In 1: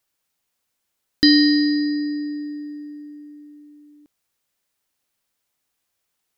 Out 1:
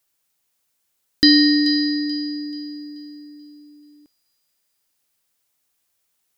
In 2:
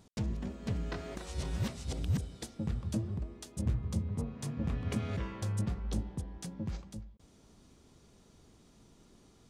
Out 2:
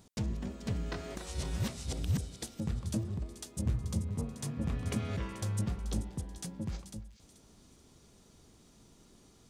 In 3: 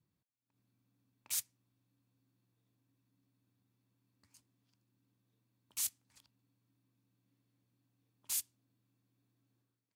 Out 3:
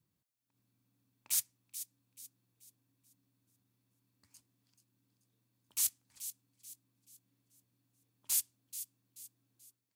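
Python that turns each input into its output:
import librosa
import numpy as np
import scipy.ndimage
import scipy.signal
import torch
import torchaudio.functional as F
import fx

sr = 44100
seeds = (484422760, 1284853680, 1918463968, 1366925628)

p1 = fx.high_shelf(x, sr, hz=5300.0, db=6.0)
y = p1 + fx.echo_wet_highpass(p1, sr, ms=433, feedback_pct=36, hz=2700.0, wet_db=-11.5, dry=0)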